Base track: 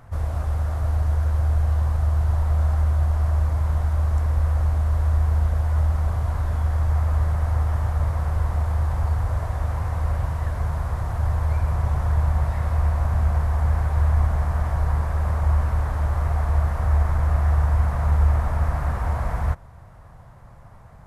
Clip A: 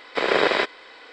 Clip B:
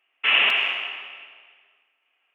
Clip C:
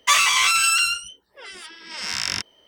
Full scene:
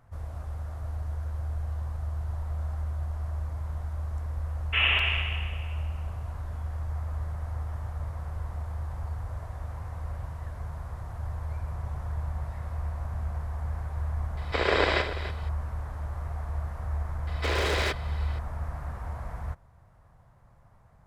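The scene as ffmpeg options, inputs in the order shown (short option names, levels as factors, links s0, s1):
-filter_complex "[1:a]asplit=2[s0][s1];[0:a]volume=0.251[s2];[s0]aecho=1:1:65|287:0.335|0.251[s3];[s1]volume=14.1,asoftclip=hard,volume=0.0708[s4];[2:a]atrim=end=2.34,asetpts=PTS-STARTPTS,volume=0.531,afade=t=in:d=0.004:c=hsin,afade=t=out:st=2.336:d=0.004:c=hsin,adelay=198009S[s5];[s3]atrim=end=1.12,asetpts=PTS-STARTPTS,volume=0.562,afade=t=in:d=0.004:c=hsin,afade=t=out:st=1.116:d=0.004:c=hsin,adelay=14370[s6];[s4]atrim=end=1.12,asetpts=PTS-STARTPTS,volume=0.75,afade=t=in:d=0.004:c=hsin,afade=t=out:st=1.116:d=0.004:c=hsin,adelay=17270[s7];[s2][s5][s6][s7]amix=inputs=4:normalize=0"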